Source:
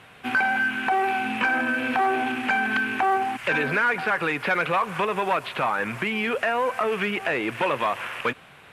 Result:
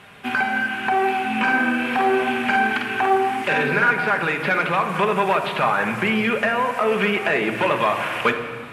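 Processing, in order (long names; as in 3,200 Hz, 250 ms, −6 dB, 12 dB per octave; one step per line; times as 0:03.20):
speech leveller 0.5 s
0:01.42–0:03.91: double-tracking delay 49 ms −4 dB
rectangular room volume 2,600 cubic metres, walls mixed, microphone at 1.3 metres
level +2 dB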